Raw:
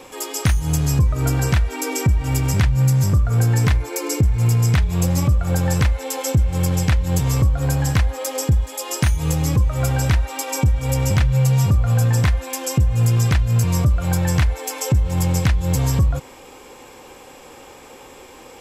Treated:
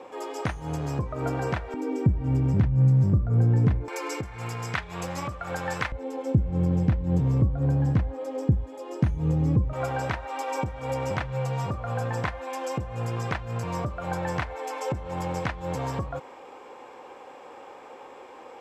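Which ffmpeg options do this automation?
-af "asetnsamples=n=441:p=0,asendcmd='1.74 bandpass f 230;3.88 bandpass f 1300;5.92 bandpass f 240;9.73 bandpass f 810',bandpass=f=640:t=q:w=0.83:csg=0"

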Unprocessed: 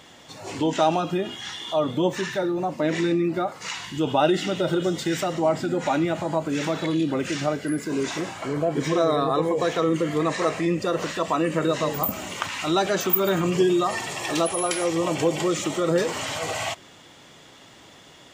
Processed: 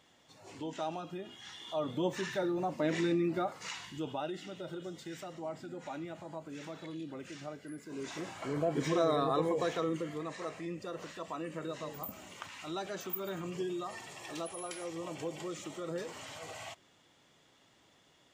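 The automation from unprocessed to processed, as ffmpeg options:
-af "volume=3dB,afade=t=in:st=1.26:d=1.18:silence=0.354813,afade=t=out:st=3.51:d=0.74:silence=0.281838,afade=t=in:st=7.86:d=0.72:silence=0.281838,afade=t=out:st=9.48:d=0.75:silence=0.354813"

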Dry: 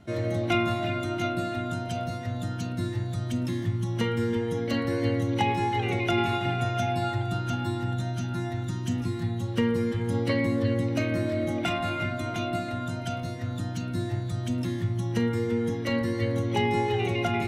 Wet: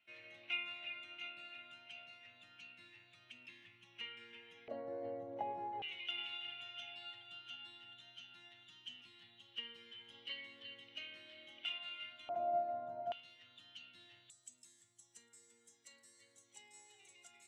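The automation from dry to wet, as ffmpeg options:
-af "asetnsamples=n=441:p=0,asendcmd='4.68 bandpass f 640;5.82 bandpass f 3000;12.29 bandpass f 680;13.12 bandpass f 3000;14.3 bandpass f 7700',bandpass=f=2.6k:t=q:w=10:csg=0"

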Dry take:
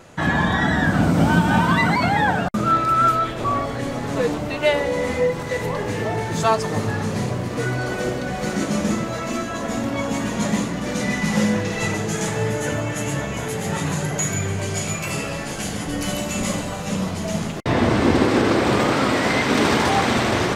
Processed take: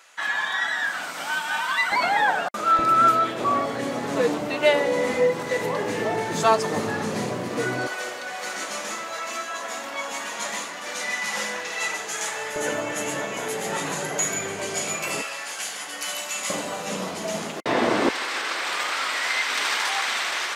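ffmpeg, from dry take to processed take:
-af "asetnsamples=n=441:p=0,asendcmd='1.92 highpass f 610;2.79 highpass f 230;7.87 highpass f 870;12.56 highpass f 350;15.22 highpass f 1000;16.5 highpass f 340;18.09 highpass f 1400',highpass=1.4k"

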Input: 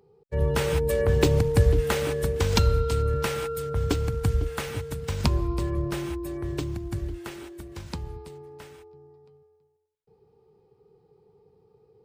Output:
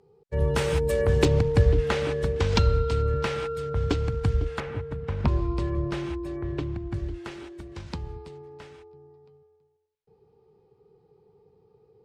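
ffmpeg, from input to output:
-af "asetnsamples=n=441:p=0,asendcmd='1.25 lowpass f 4800;4.6 lowpass f 1800;5.28 lowpass f 4700;6.36 lowpass f 2800;6.94 lowpass f 5500',lowpass=10k"

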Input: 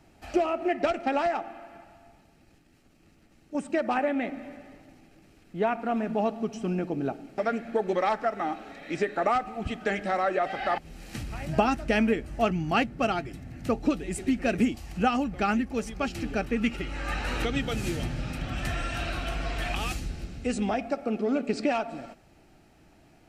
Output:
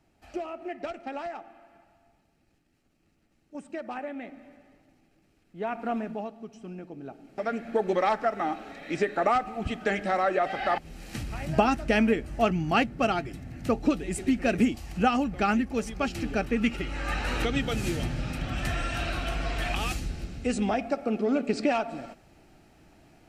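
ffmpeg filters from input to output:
-af "volume=11.5dB,afade=t=in:st=5.56:d=0.31:silence=0.375837,afade=t=out:st=5.87:d=0.42:silence=0.298538,afade=t=in:st=7.07:d=0.73:silence=0.237137"

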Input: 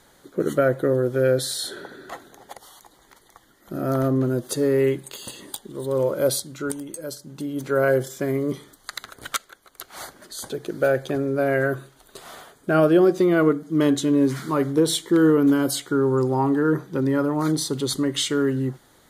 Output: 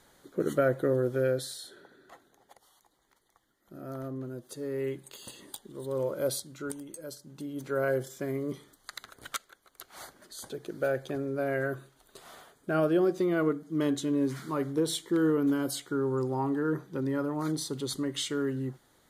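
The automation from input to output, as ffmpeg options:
-af "volume=1.5dB,afade=t=out:st=1.1:d=0.56:silence=0.298538,afade=t=in:st=4.57:d=0.72:silence=0.421697"

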